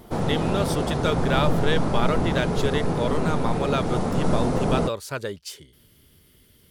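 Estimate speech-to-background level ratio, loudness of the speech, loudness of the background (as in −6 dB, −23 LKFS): −2.5 dB, −28.0 LKFS, −25.5 LKFS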